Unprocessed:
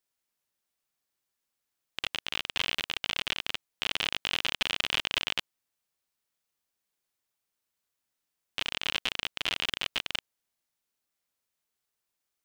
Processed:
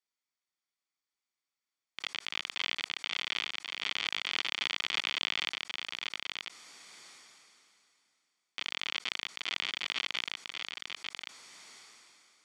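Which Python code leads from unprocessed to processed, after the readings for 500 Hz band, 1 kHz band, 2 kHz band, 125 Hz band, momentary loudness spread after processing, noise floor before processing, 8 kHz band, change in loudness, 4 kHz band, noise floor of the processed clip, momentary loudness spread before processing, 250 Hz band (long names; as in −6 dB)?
−7.0 dB, −2.5 dB, −1.5 dB, below −10 dB, 19 LU, −85 dBFS, −3.0 dB, −3.5 dB, −2.5 dB, below −85 dBFS, 6 LU, −6.0 dB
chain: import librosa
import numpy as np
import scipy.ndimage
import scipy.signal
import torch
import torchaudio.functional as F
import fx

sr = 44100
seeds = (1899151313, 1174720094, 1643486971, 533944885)

y = fx.cabinet(x, sr, low_hz=270.0, low_slope=12, high_hz=7900.0, hz=(940.0, 1900.0, 4600.0), db=(-3, 5, 3))
y = y + 0.4 * np.pad(y, (int(0.9 * sr / 1000.0), 0))[:len(y)]
y = y + 10.0 ** (-5.5 / 20.0) * np.pad(y, (int(1085 * sr / 1000.0), 0))[:len(y)]
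y = fx.sustainer(y, sr, db_per_s=22.0)
y = y * 10.0 ** (-7.0 / 20.0)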